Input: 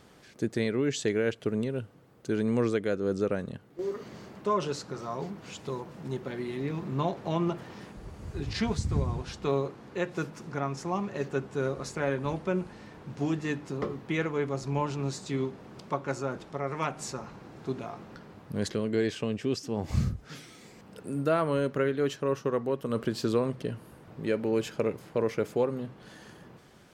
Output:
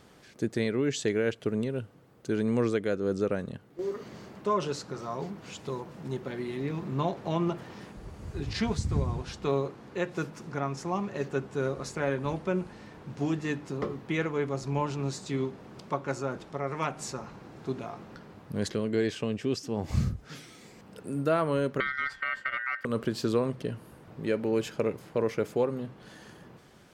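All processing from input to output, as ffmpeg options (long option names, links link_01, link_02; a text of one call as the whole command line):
ffmpeg -i in.wav -filter_complex "[0:a]asettb=1/sr,asplit=3[link_01][link_02][link_03];[link_01]atrim=end=21.804[link_04];[link_02]atrim=start=21.8:end=22.85,asetpts=PTS-STARTPTS,afade=type=in:duration=0.004:curve=qsin,afade=type=out:start_time=1.046:duration=0.004:curve=qsin,bass=frequency=250:gain=14,treble=frequency=4000:gain=-10,acrossover=split=520|1900[link_05][link_06][link_07];[link_05]acompressor=threshold=-28dB:ratio=4[link_08];[link_06]acompressor=threshold=-37dB:ratio=4[link_09];[link_07]acompressor=threshold=-44dB:ratio=4[link_10];[link_08][link_09][link_10]amix=inputs=3:normalize=0,aeval=exprs='val(0)*sin(2*PI*1700*n/s)':channel_layout=same[link_11];[link_03]atrim=start=22.846[link_12];[link_04][link_11]acrossfade=duration=0.004:curve1=hsin:curve2=qsin[link_13];[link_13][link_12]acrossfade=duration=0.004:curve1=qsin:curve2=hsin" out.wav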